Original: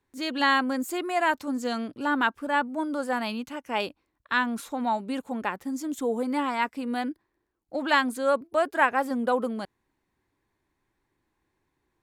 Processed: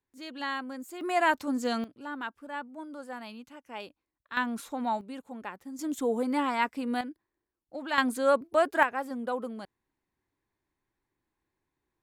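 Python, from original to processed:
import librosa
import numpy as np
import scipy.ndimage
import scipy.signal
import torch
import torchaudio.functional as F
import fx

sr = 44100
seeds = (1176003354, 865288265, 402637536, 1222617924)

y = fx.gain(x, sr, db=fx.steps((0.0, -11.5), (1.01, -0.5), (1.84, -12.5), (4.37, -3.5), (5.01, -10.0), (5.79, -1.0), (7.01, -8.5), (7.98, 0.0), (8.83, -7.5)))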